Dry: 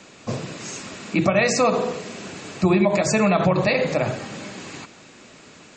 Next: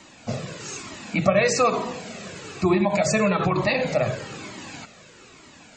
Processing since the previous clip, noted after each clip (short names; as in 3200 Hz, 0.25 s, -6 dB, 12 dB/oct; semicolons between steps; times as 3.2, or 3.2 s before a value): cascading flanger falling 1.1 Hz; gain +3 dB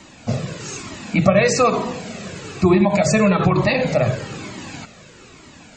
low shelf 230 Hz +7 dB; gain +3 dB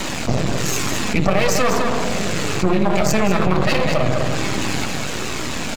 half-wave rectifier; echo 0.201 s -8.5 dB; fast leveller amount 70%; gain -1 dB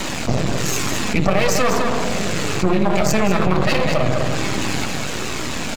nothing audible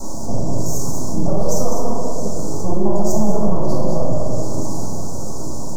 elliptic band-stop 940–5600 Hz, stop band 70 dB; reverb RT60 1.7 s, pre-delay 4 ms, DRR -5.5 dB; gain -10 dB